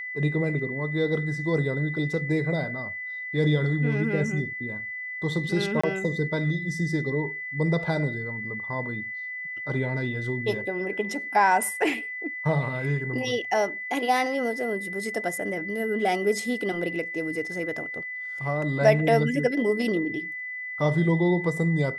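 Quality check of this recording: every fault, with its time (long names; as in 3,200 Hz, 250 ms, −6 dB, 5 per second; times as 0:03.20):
whistle 2,000 Hz −32 dBFS
0:05.81–0:05.83: drop-out 25 ms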